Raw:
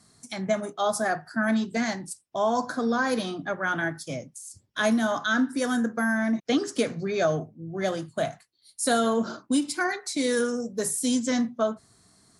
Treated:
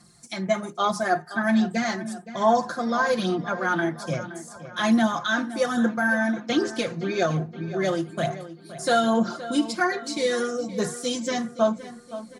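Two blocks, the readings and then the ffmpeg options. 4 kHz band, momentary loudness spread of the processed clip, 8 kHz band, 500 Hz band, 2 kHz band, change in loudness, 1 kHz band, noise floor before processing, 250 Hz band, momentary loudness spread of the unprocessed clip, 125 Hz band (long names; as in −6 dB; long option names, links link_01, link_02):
+2.5 dB, 10 LU, −3.5 dB, +2.0 dB, +2.0 dB, +2.0 dB, +4.0 dB, −65 dBFS, +1.5 dB, 10 LU, +5.0 dB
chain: -filter_complex "[0:a]acrossover=split=6700[link_01][link_02];[link_02]acompressor=threshold=-51dB:ratio=4:attack=1:release=60[link_03];[link_01][link_03]amix=inputs=2:normalize=0,aecho=1:1:5.7:0.76,aphaser=in_gain=1:out_gain=1:delay=3.3:decay=0.39:speed=1.2:type=sinusoidal,asplit=2[link_04][link_05];[link_05]adelay=519,lowpass=frequency=3600:poles=1,volume=-14dB,asplit=2[link_06][link_07];[link_07]adelay=519,lowpass=frequency=3600:poles=1,volume=0.52,asplit=2[link_08][link_09];[link_09]adelay=519,lowpass=frequency=3600:poles=1,volume=0.52,asplit=2[link_10][link_11];[link_11]adelay=519,lowpass=frequency=3600:poles=1,volume=0.52,asplit=2[link_12][link_13];[link_13]adelay=519,lowpass=frequency=3600:poles=1,volume=0.52[link_14];[link_04][link_06][link_08][link_10][link_12][link_14]amix=inputs=6:normalize=0"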